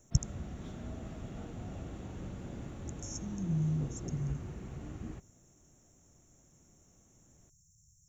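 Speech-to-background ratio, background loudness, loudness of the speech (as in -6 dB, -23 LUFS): 7.0 dB, -44.0 LUFS, -37.0 LUFS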